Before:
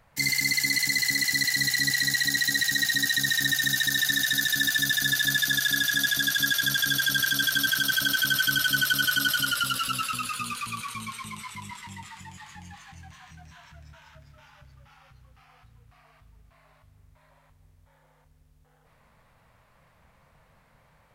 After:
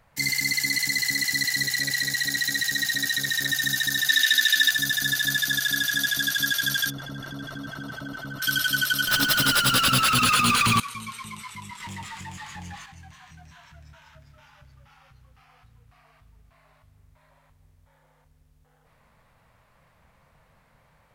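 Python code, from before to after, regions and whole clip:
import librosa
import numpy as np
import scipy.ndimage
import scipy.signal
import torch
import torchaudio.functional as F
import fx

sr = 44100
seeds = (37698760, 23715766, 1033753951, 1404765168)

y = fx.chain(x, sr, fx.notch(hz=630.0, q=8.3),
    fx.transformer_sat(knee_hz=1300.0), at=(1.63, 3.5))
y = fx.chain(y, sr, fx.highpass(hz=1000.0, slope=6),
    fx.peak_eq(hz=2700.0, db=10.5, octaves=1.4), at=(4.09, 4.71))
y = fx.chain(y, sr, fx.savgol(points=65),
    fx.env_flatten(amount_pct=70), at=(6.9, 8.42))
y = fx.chain(y, sr, fx.leveller(passes=5),
    fx.peak_eq(hz=11000.0, db=-7.0, octaves=1.8),
    fx.over_compress(threshold_db=-20.0, ratio=-0.5), at=(9.07, 10.8))
y = fx.chain(y, sr, fx.leveller(passes=2),
    fx.doppler_dist(depth_ms=0.11), at=(11.8, 12.86))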